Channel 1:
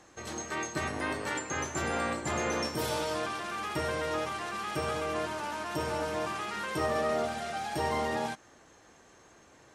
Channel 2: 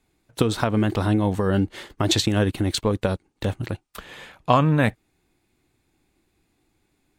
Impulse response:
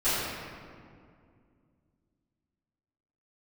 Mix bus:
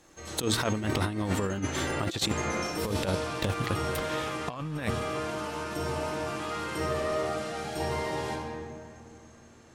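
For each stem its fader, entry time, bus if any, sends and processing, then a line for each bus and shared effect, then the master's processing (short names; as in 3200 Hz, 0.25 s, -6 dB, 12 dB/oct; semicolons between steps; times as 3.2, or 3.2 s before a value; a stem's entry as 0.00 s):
-12.0 dB, 0.00 s, send -7.5 dB, low shelf 330 Hz +7 dB
-4.0 dB, 0.00 s, muted 2.32–2.85, no send, soft clip -6 dBFS, distortion -26 dB; de-hum 115.4 Hz, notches 2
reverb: on, RT60 2.2 s, pre-delay 3 ms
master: high shelf 2400 Hz +6.5 dB; negative-ratio compressor -27 dBFS, ratio -0.5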